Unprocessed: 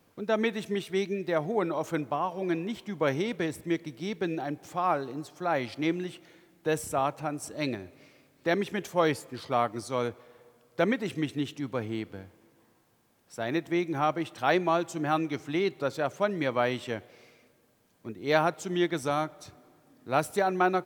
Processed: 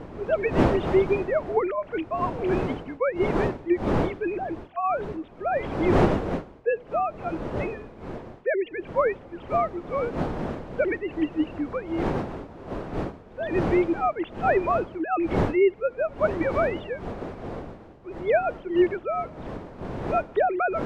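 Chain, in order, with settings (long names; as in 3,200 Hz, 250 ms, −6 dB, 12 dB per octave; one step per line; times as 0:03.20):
three sine waves on the formant tracks
wind on the microphone 510 Hz −34 dBFS
level +3 dB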